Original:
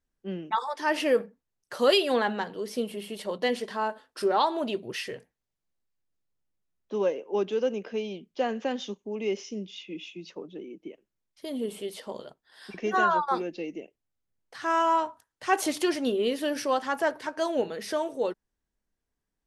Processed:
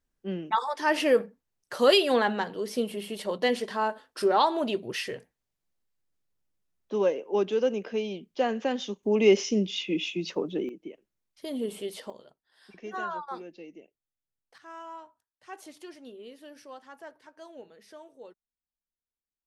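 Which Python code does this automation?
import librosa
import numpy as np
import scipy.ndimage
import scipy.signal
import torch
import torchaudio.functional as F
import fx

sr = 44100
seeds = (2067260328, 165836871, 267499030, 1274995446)

y = fx.gain(x, sr, db=fx.steps((0.0, 1.5), (9.03, 10.0), (10.69, 0.0), (12.1, -10.5), (14.58, -19.0)))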